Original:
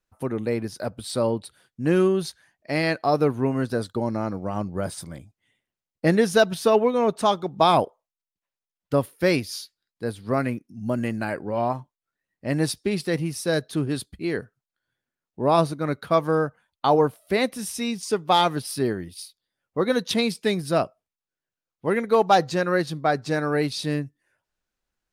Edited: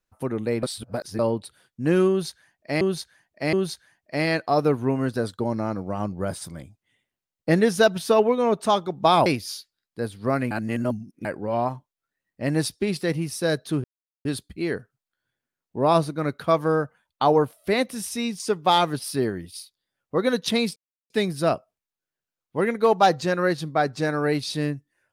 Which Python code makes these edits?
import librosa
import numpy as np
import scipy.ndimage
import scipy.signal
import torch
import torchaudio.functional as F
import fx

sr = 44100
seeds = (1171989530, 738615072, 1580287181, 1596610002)

y = fx.edit(x, sr, fx.reverse_span(start_s=0.63, length_s=0.56),
    fx.repeat(start_s=2.09, length_s=0.72, count=3),
    fx.cut(start_s=7.82, length_s=1.48),
    fx.reverse_span(start_s=10.55, length_s=0.74),
    fx.insert_silence(at_s=13.88, length_s=0.41),
    fx.insert_silence(at_s=20.39, length_s=0.34), tone=tone)